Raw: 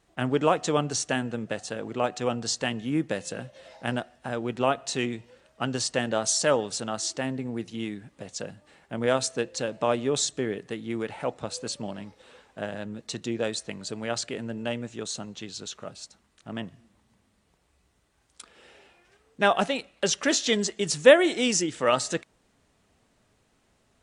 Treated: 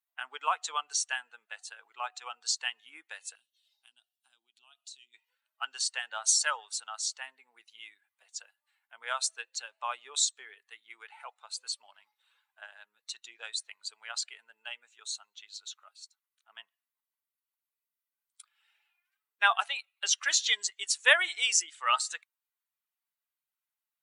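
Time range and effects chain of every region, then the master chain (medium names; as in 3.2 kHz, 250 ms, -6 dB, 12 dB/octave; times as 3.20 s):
3.35–5.14 s: high-order bell 1 kHz -15 dB 2.7 oct + compression, threshold -36 dBFS
whole clip: expander on every frequency bin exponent 1.5; high-pass 1 kHz 24 dB/octave; band-stop 5.1 kHz, Q 17; trim +3 dB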